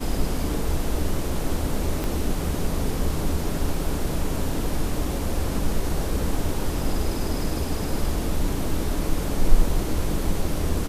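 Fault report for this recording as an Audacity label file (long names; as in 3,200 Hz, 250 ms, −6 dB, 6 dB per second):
2.040000	2.040000	click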